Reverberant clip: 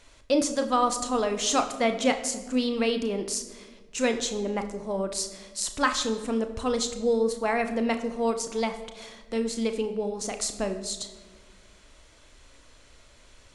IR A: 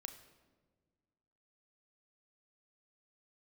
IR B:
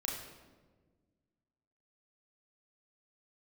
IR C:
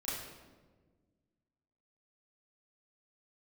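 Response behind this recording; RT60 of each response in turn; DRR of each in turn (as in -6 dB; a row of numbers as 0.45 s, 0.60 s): A; 1.5 s, 1.4 s, 1.4 s; 7.0 dB, -2.5 dB, -10.0 dB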